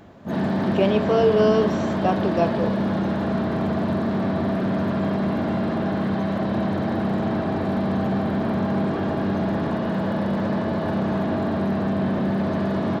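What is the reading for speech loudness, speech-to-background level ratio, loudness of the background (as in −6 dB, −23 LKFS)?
−22.5 LKFS, 1.5 dB, −24.0 LKFS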